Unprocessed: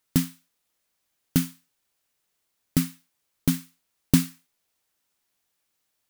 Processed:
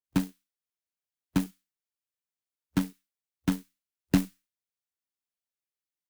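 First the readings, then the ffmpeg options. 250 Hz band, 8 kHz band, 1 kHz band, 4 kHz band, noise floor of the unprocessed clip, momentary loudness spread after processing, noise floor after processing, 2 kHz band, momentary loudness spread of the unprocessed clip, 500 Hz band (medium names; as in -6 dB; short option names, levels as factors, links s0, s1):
-3.5 dB, -11.5 dB, +3.0 dB, -7.0 dB, -77 dBFS, 12 LU, under -85 dBFS, -2.0 dB, 12 LU, -0.5 dB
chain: -filter_complex "[0:a]afwtdn=0.0251,acrossover=split=920[s0][s1];[s1]adelay=40[s2];[s0][s2]amix=inputs=2:normalize=0,acrusher=bits=2:mode=log:mix=0:aa=0.000001,afreqshift=19,volume=0.631"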